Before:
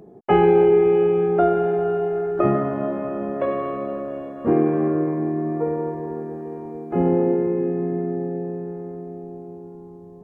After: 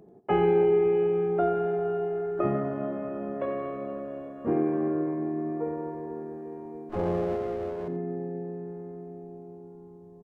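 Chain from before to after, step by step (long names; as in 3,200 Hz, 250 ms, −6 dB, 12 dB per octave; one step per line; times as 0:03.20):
0:06.89–0:07.88: lower of the sound and its delayed copy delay 9.5 ms
on a send: single-tap delay 87 ms −12 dB
on the sum: level −8 dB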